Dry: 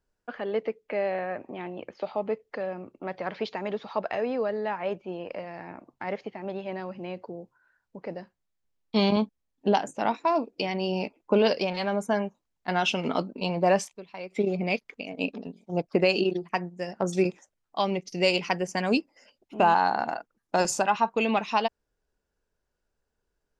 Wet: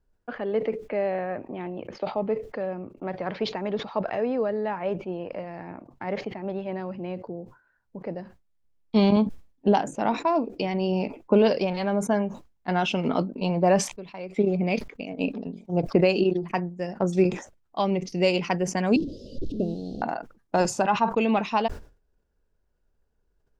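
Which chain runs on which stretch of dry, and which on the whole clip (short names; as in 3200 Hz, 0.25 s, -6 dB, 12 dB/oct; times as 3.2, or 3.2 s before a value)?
18.96–20.02 delta modulation 64 kbps, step -28.5 dBFS + inverse Chebyshev band-stop 870–2200 Hz, stop band 50 dB + air absorption 260 m
whole clip: tilt -2 dB/oct; sustainer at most 140 dB/s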